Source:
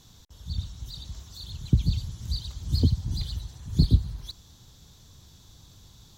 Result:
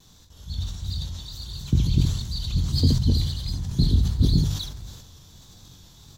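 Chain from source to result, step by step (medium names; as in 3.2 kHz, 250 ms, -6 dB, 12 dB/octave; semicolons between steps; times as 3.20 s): chunks repeated in reverse 371 ms, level -0.5 dB; hum notches 50/100/150 Hz; vibrato 1.5 Hz 44 cents; on a send: early reflections 22 ms -7 dB, 71 ms -10 dB; on the sum: decay stretcher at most 56 dB/s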